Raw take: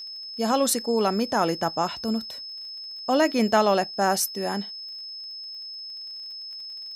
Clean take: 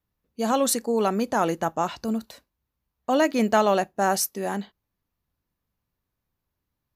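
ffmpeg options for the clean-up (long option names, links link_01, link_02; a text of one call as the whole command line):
ffmpeg -i in.wav -af "adeclick=threshold=4,bandreject=frequency=5200:width=30" out.wav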